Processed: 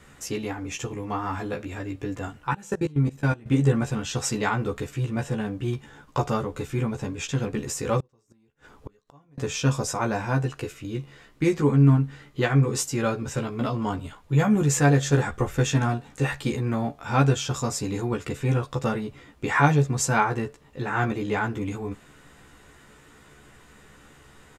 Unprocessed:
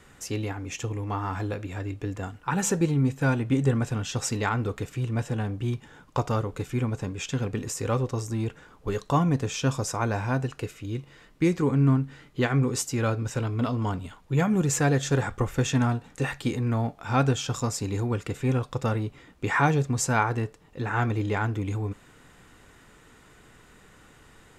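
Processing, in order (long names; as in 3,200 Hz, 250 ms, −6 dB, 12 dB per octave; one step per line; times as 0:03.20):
0:02.53–0:03.46: output level in coarse steps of 23 dB
double-tracking delay 14 ms −2.5 dB
0:08.00–0:09.38: gate with flip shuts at −25 dBFS, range −35 dB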